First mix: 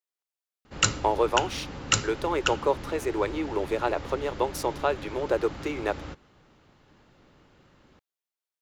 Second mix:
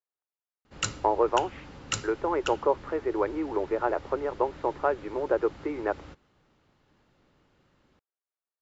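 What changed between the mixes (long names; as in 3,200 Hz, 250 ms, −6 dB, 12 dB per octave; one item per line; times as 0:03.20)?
speech: add low-pass filter 1,800 Hz 24 dB per octave
background −7.5 dB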